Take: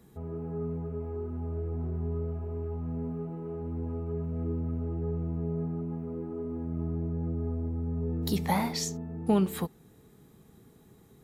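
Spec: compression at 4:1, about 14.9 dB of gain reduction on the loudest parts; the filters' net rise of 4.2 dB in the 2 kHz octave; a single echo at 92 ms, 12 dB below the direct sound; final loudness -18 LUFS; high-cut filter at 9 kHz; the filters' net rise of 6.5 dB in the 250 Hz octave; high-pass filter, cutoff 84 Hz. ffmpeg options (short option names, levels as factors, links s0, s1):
-af "highpass=84,lowpass=9000,equalizer=f=250:t=o:g=8.5,equalizer=f=2000:t=o:g=4.5,acompressor=threshold=0.0224:ratio=4,aecho=1:1:92:0.251,volume=7.94"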